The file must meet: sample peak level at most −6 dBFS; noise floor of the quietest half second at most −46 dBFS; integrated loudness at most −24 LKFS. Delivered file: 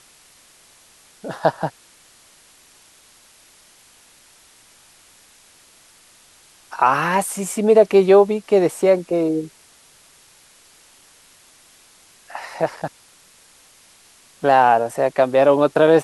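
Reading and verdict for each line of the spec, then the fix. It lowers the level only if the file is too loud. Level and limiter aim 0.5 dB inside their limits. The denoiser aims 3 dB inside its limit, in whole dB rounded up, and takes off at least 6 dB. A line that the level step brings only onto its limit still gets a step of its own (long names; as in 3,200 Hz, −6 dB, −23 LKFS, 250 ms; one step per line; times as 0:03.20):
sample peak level −2.0 dBFS: out of spec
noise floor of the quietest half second −51 dBFS: in spec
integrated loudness −17.5 LKFS: out of spec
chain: level −7 dB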